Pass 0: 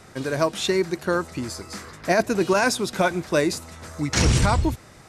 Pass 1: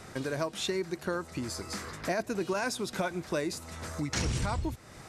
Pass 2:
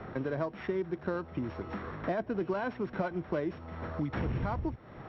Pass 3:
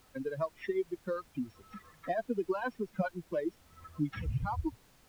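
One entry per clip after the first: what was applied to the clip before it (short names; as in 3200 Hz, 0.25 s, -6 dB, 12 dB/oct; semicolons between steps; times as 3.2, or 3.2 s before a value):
compressor 2.5:1, threshold -34 dBFS, peak gain reduction 13 dB
sample sorter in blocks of 8 samples; Bessel low-pass 1700 Hz, order 4; three-band squash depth 40%
per-bin expansion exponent 3; added noise pink -68 dBFS; gain +5 dB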